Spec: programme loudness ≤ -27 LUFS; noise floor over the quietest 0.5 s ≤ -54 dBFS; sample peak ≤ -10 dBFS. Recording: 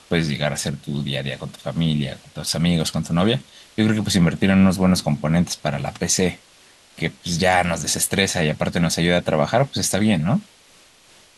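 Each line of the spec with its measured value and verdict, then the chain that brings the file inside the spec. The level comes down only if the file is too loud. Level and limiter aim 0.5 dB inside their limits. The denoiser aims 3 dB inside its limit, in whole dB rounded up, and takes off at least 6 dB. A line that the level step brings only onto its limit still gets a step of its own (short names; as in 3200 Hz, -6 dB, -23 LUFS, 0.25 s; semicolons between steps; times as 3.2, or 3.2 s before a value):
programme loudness -20.5 LUFS: fail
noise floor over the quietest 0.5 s -52 dBFS: fail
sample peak -3.5 dBFS: fail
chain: gain -7 dB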